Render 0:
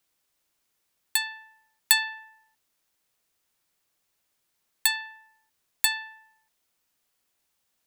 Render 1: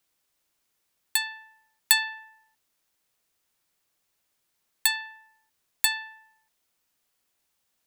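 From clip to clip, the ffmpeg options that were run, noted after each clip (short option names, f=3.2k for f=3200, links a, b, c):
-af anull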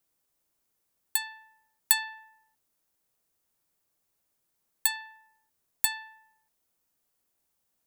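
-af "equalizer=f=2.9k:w=0.46:g=-8"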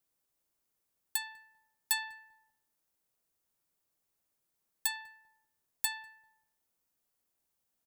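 -filter_complex "[0:a]asoftclip=type=hard:threshold=-16.5dB,asplit=2[a][b];[b]adelay=197,lowpass=f=900:p=1,volume=-18dB,asplit=2[c][d];[d]adelay=197,lowpass=f=900:p=1,volume=0.38,asplit=2[e][f];[f]adelay=197,lowpass=f=900:p=1,volume=0.38[g];[a][c][e][g]amix=inputs=4:normalize=0,volume=-4.5dB"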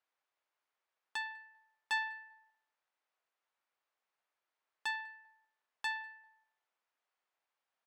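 -af "aeval=exprs='(tanh(22.4*val(0)+0.65)-tanh(0.65))/22.4':c=same,highpass=770,lowpass=2.5k,volume=8.5dB"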